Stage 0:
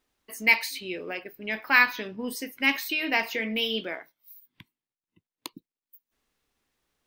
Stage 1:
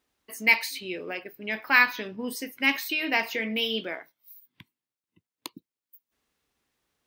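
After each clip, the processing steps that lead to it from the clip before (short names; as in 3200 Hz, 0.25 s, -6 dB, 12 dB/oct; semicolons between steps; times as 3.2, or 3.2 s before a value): HPF 47 Hz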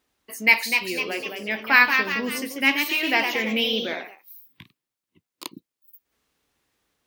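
echoes that change speed 0.277 s, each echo +1 st, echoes 3, each echo -6 dB; gain +3.5 dB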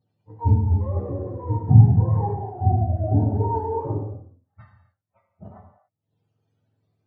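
spectrum mirrored in octaves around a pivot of 450 Hz; non-linear reverb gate 0.31 s falling, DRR 0.5 dB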